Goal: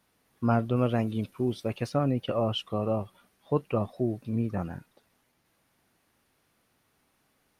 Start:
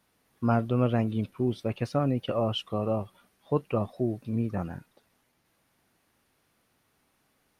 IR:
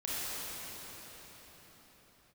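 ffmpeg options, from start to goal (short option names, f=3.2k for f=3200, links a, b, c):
-filter_complex "[0:a]asettb=1/sr,asplit=3[a][b][c];[a]atrim=end=0.764[d];[b]atrim=start=0.76:end=1.9,asetpts=PTS-STARTPTS,afade=t=in:d=0.004:c=qsin,afade=t=out:st=1.136:d=0.004:c=qsin,bass=f=250:g=-2,treble=f=4k:g=5[e];[c]atrim=start=1.896[f];[d][e]acrossfade=d=0.004:c1=hsin:c2=qsin[g];[g][f]acrossfade=d=0.004:c1=qsin:c2=hsin"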